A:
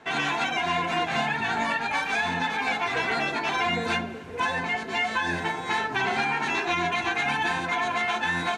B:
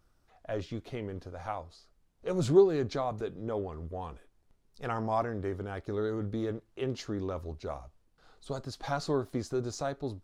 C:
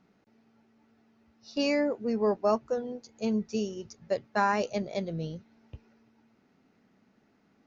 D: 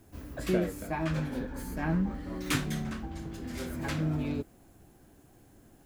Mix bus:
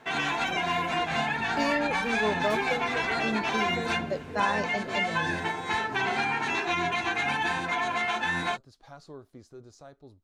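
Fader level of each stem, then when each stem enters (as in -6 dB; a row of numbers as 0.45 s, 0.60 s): -2.0 dB, -15.0 dB, -3.0 dB, -14.0 dB; 0.00 s, 0.00 s, 0.00 s, 0.00 s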